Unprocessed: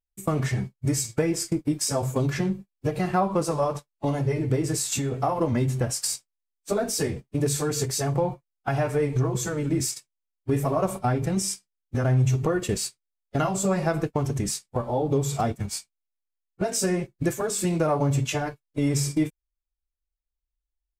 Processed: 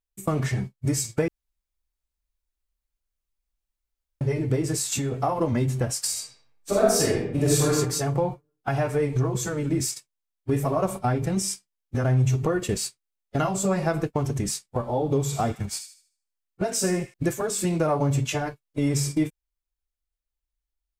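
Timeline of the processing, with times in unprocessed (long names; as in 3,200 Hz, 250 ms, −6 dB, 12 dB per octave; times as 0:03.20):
0:01.28–0:04.21: fill with room tone
0:06.11–0:07.73: thrown reverb, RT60 0.8 s, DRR −4 dB
0:14.93–0:17.14: delay with a high-pass on its return 76 ms, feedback 33%, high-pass 1,700 Hz, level −9 dB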